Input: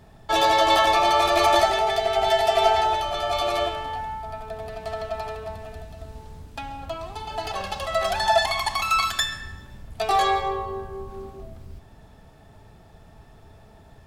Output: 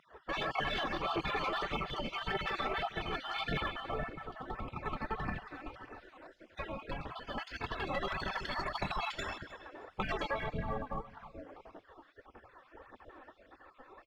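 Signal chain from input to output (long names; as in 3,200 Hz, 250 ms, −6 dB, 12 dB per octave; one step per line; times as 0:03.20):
time-frequency cells dropped at random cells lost 36%
low-pass filter 1,500 Hz 12 dB per octave
low shelf with overshoot 120 Hz −7 dB, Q 3
in parallel at +2 dB: downward compressor, threshold −31 dBFS, peak gain reduction 16 dB
on the sum: soft clipping −7 dBFS, distortion −26 dB
gate on every frequency bin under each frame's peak −15 dB weak
on a send: repeating echo 311 ms, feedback 24%, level −19 dB
on the sum: brickwall limiter −27 dBFS, peak gain reduction 10 dB
phase shifter 1.7 Hz, delay 4 ms, feedback 51%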